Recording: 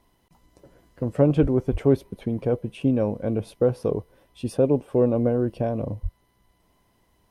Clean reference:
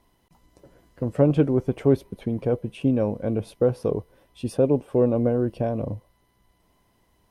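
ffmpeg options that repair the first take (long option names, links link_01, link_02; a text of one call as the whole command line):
ffmpeg -i in.wav -filter_complex "[0:a]asplit=3[link_01][link_02][link_03];[link_01]afade=type=out:start_time=1.41:duration=0.02[link_04];[link_02]highpass=frequency=140:width=0.5412,highpass=frequency=140:width=1.3066,afade=type=in:start_time=1.41:duration=0.02,afade=type=out:start_time=1.53:duration=0.02[link_05];[link_03]afade=type=in:start_time=1.53:duration=0.02[link_06];[link_04][link_05][link_06]amix=inputs=3:normalize=0,asplit=3[link_07][link_08][link_09];[link_07]afade=type=out:start_time=1.71:duration=0.02[link_10];[link_08]highpass=frequency=140:width=0.5412,highpass=frequency=140:width=1.3066,afade=type=in:start_time=1.71:duration=0.02,afade=type=out:start_time=1.83:duration=0.02[link_11];[link_09]afade=type=in:start_time=1.83:duration=0.02[link_12];[link_10][link_11][link_12]amix=inputs=3:normalize=0,asplit=3[link_13][link_14][link_15];[link_13]afade=type=out:start_time=6.02:duration=0.02[link_16];[link_14]highpass=frequency=140:width=0.5412,highpass=frequency=140:width=1.3066,afade=type=in:start_time=6.02:duration=0.02,afade=type=out:start_time=6.14:duration=0.02[link_17];[link_15]afade=type=in:start_time=6.14:duration=0.02[link_18];[link_16][link_17][link_18]amix=inputs=3:normalize=0" out.wav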